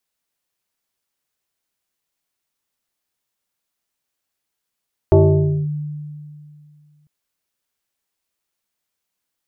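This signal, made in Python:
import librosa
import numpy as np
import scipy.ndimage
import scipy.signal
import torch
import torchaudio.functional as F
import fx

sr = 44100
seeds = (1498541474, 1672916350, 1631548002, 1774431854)

y = fx.fm2(sr, length_s=1.95, level_db=-6, carrier_hz=149.0, ratio=1.63, index=1.9, index_s=0.56, decay_s=2.43, shape='linear')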